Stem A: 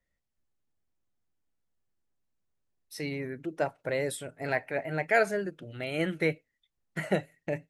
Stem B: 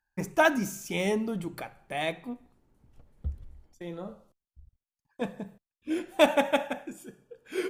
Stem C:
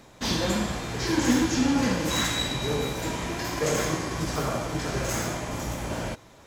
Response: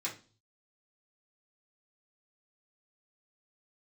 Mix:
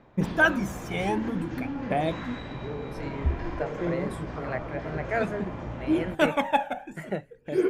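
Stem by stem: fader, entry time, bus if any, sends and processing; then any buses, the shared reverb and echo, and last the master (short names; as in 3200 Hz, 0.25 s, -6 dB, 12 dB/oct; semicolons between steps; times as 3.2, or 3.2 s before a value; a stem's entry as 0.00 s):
-3.0 dB, 0.00 s, no send, dry
+1.0 dB, 0.00 s, no send, phaser 0.52 Hz, delay 1.4 ms, feedback 67%
-3.5 dB, 0.00 s, no send, compressor, threshold -26 dBFS, peak gain reduction 9 dB; LPF 2800 Hz 12 dB/oct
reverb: off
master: high shelf 3200 Hz -11.5 dB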